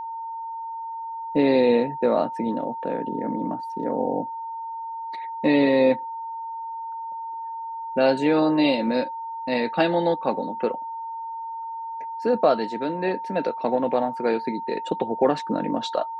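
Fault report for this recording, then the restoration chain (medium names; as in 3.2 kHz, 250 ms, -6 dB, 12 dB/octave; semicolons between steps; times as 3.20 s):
whine 910 Hz -30 dBFS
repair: band-stop 910 Hz, Q 30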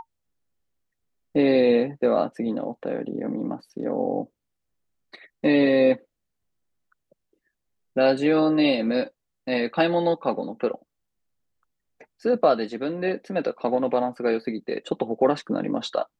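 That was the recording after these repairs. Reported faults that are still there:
nothing left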